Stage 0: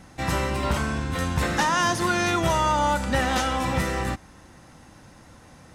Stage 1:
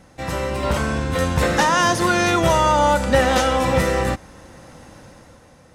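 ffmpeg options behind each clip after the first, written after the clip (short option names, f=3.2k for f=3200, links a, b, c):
-af "equalizer=f=520:w=3.3:g=7.5,dynaudnorm=f=120:g=11:m=8dB,volume=-2dB"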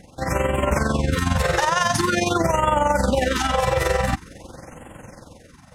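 -af "alimiter=limit=-14.5dB:level=0:latency=1:release=23,tremolo=f=22:d=0.621,afftfilt=real='re*(1-between(b*sr/1024,230*pow(4900/230,0.5+0.5*sin(2*PI*0.46*pts/sr))/1.41,230*pow(4900/230,0.5+0.5*sin(2*PI*0.46*pts/sr))*1.41))':imag='im*(1-between(b*sr/1024,230*pow(4900/230,0.5+0.5*sin(2*PI*0.46*pts/sr))/1.41,230*pow(4900/230,0.5+0.5*sin(2*PI*0.46*pts/sr))*1.41))':win_size=1024:overlap=0.75,volume=5.5dB"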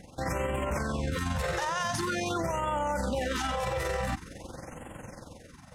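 -af "alimiter=limit=-19.5dB:level=0:latency=1:release=36,volume=-3dB"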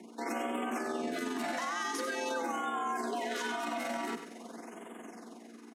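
-af "aecho=1:1:100|200|300:0.335|0.0804|0.0193,aeval=exprs='val(0)+0.00447*(sin(2*PI*60*n/s)+sin(2*PI*2*60*n/s)/2+sin(2*PI*3*60*n/s)/3+sin(2*PI*4*60*n/s)/4+sin(2*PI*5*60*n/s)/5)':c=same,afreqshift=170,volume=-5dB"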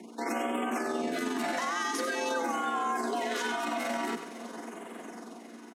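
-af "aecho=1:1:542|1084|1626|2168|2710:0.133|0.0773|0.0449|0.026|0.0151,volume=3.5dB"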